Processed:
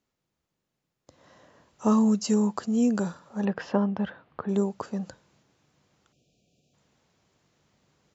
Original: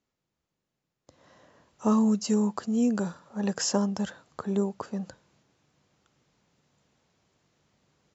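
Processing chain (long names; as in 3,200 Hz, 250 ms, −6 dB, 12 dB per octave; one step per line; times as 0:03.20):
0:03.45–0:04.49: low-pass filter 3,000 Hz 24 dB per octave
0:06.13–0:06.74: time-frequency box erased 760–2,300 Hz
level +1.5 dB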